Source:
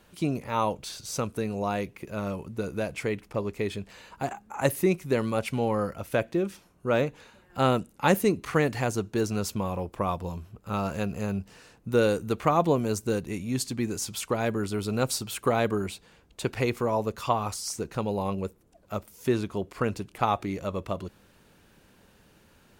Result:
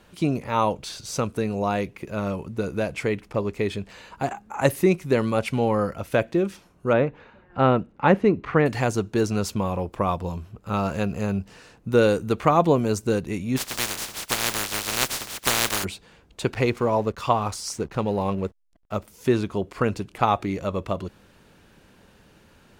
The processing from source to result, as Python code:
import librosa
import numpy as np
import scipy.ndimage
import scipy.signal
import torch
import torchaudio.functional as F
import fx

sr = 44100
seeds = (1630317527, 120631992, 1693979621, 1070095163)

y = fx.lowpass(x, sr, hz=2200.0, slope=12, at=(6.93, 8.66))
y = fx.spec_flatten(y, sr, power=0.11, at=(13.56, 15.83), fade=0.02)
y = fx.backlash(y, sr, play_db=-44.5, at=(16.54, 18.95))
y = fx.high_shelf(y, sr, hz=9500.0, db=-8.5)
y = y * librosa.db_to_amplitude(4.5)